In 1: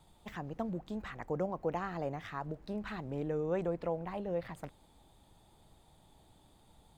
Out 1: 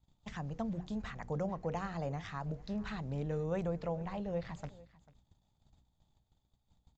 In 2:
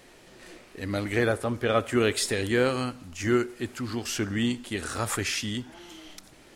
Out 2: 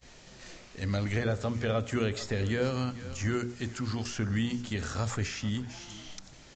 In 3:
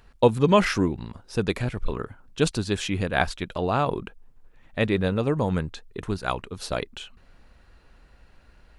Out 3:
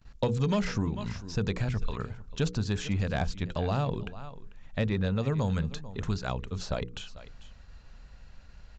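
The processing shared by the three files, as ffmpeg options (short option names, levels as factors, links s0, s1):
-filter_complex "[0:a]equalizer=f=330:w=2.5:g=-7,aeval=exprs='val(0)+0.00141*(sin(2*PI*60*n/s)+sin(2*PI*2*60*n/s)/2+sin(2*PI*3*60*n/s)/3+sin(2*PI*4*60*n/s)/4+sin(2*PI*5*60*n/s)/5)':c=same,agate=range=0.0794:threshold=0.002:ratio=16:detection=peak,bass=f=250:g=7,treble=f=4000:g=8,bandreject=f=60:t=h:w=6,bandreject=f=120:t=h:w=6,bandreject=f=180:t=h:w=6,bandreject=f=240:t=h:w=6,bandreject=f=300:t=h:w=6,bandreject=f=360:t=h:w=6,bandreject=f=420:t=h:w=6,bandreject=f=480:t=h:w=6,aecho=1:1:443:0.0944,aresample=16000,aeval=exprs='0.562*sin(PI/2*1.41*val(0)/0.562)':c=same,aresample=44100,acrossover=split=690|2000[s0][s1][s2];[s0]acompressor=threshold=0.141:ratio=4[s3];[s1]acompressor=threshold=0.0282:ratio=4[s4];[s2]acompressor=threshold=0.02:ratio=4[s5];[s3][s4][s5]amix=inputs=3:normalize=0,volume=0.376"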